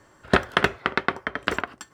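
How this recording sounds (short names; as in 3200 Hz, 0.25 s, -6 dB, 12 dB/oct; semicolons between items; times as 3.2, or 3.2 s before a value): noise floor -58 dBFS; spectral tilt -2.5 dB/oct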